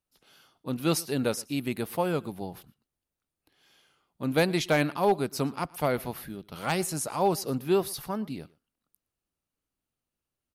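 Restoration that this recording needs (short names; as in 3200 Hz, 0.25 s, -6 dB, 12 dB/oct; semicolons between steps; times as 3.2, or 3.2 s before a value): clip repair -15 dBFS; inverse comb 0.117 s -23.5 dB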